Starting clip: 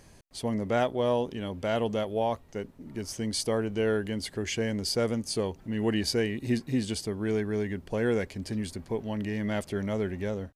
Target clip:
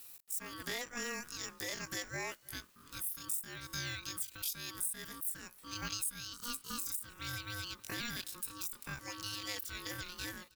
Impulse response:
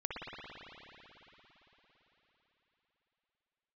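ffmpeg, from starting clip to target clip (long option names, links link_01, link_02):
-af "aderivative,acompressor=threshold=-48dB:ratio=6,asetrate=85689,aresample=44100,atempo=0.514651,aeval=exprs='0.0237*(cos(1*acos(clip(val(0)/0.0237,-1,1)))-cos(1*PI/2))+0.000188*(cos(4*acos(clip(val(0)/0.0237,-1,1)))-cos(4*PI/2))':channel_layout=same,aeval=exprs='val(0)*sin(2*PI*720*n/s)':channel_layout=same,aecho=1:1:316:0.0631,volume=15.5dB"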